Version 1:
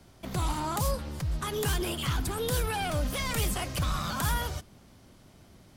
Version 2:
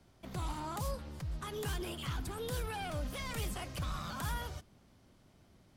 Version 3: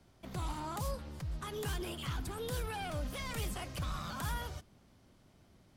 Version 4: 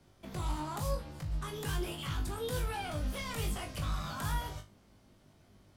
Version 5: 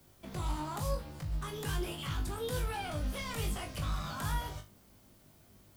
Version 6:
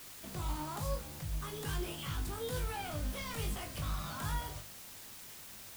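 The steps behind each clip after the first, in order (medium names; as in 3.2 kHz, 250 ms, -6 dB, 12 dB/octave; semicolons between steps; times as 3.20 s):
treble shelf 6 kHz -4.5 dB; trim -8.5 dB
no audible change
flutter echo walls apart 3.4 m, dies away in 0.24 s
added noise blue -67 dBFS
word length cut 8-bit, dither triangular; trim -2.5 dB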